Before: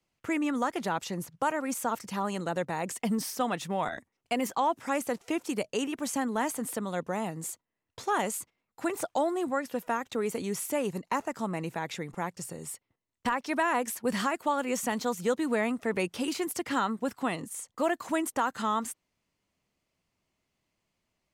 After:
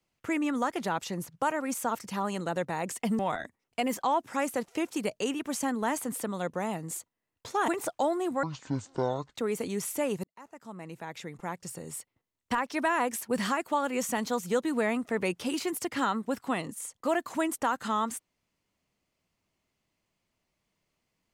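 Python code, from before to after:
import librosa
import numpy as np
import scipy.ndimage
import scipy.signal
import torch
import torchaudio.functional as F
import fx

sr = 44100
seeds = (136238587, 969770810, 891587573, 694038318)

y = fx.edit(x, sr, fx.cut(start_s=3.19, length_s=0.53),
    fx.cut(start_s=8.21, length_s=0.63),
    fx.speed_span(start_s=9.59, length_s=0.51, speed=0.55),
    fx.fade_in_span(start_s=10.98, length_s=1.68), tone=tone)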